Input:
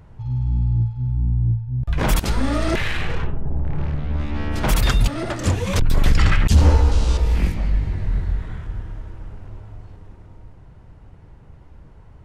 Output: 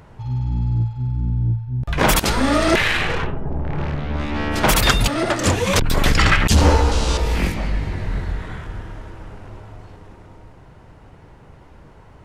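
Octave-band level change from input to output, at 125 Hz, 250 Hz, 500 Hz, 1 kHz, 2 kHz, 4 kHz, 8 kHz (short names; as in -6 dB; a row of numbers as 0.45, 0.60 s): -1.0, +4.0, +6.5, +7.5, +8.0, +8.0, +8.0 dB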